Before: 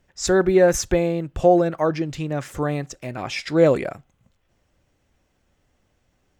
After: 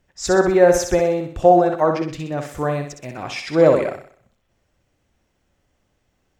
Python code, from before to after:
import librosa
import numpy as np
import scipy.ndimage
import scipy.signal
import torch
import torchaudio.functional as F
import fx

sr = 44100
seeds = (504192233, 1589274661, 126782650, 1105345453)

y = fx.echo_thinned(x, sr, ms=63, feedback_pct=48, hz=170.0, wet_db=-6.0)
y = fx.dynamic_eq(y, sr, hz=840.0, q=0.82, threshold_db=-29.0, ratio=4.0, max_db=7)
y = F.gain(torch.from_numpy(y), -1.5).numpy()